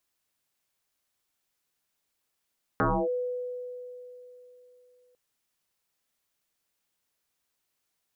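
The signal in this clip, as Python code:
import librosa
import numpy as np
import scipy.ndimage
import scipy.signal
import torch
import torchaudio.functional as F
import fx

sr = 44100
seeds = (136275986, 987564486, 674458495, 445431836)

y = fx.fm2(sr, length_s=2.35, level_db=-20.5, carrier_hz=496.0, ratio=0.31, index=6.9, index_s=0.28, decay_s=3.4, shape='linear')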